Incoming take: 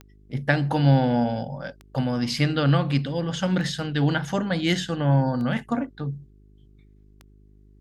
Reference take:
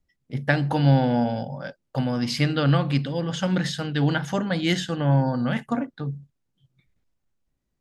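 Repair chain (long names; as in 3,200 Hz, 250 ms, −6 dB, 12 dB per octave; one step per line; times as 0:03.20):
click removal
hum removal 51.1 Hz, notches 8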